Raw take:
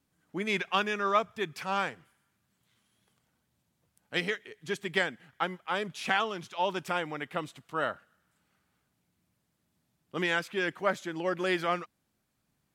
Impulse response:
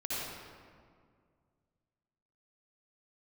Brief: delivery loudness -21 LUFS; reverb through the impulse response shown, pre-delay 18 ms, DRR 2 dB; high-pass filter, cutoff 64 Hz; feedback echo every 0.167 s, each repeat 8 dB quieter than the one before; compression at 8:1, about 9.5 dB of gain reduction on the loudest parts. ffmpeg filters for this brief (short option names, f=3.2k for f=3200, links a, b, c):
-filter_complex "[0:a]highpass=64,acompressor=threshold=-31dB:ratio=8,aecho=1:1:167|334|501|668|835:0.398|0.159|0.0637|0.0255|0.0102,asplit=2[a][b];[1:a]atrim=start_sample=2205,adelay=18[c];[b][c]afir=irnorm=-1:irlink=0,volume=-7dB[d];[a][d]amix=inputs=2:normalize=0,volume=14dB"